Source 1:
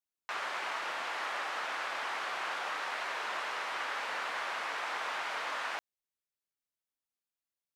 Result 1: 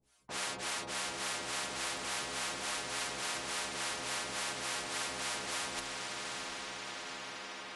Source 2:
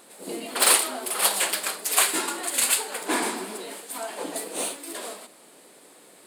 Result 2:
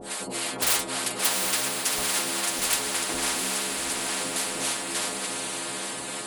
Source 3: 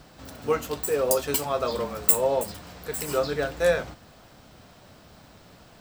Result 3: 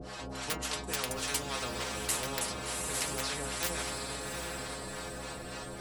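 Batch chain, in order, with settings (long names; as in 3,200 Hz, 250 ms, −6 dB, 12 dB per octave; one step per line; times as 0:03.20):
Butterworth low-pass 11,000 Hz 96 dB per octave
low-shelf EQ 490 Hz +11.5 dB
in parallel at −9 dB: wrap-around overflow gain 10 dB
on the sum: two-band tremolo in antiphase 3.5 Hz, depth 100%, crossover 590 Hz
stiff-string resonator 62 Hz, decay 0.44 s, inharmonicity 0.008
on a send: feedback delay with all-pass diffusion 769 ms, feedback 44%, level −12 dB
on the sum: every bin compressed towards the loudest bin 4 to 1
level +5.5 dB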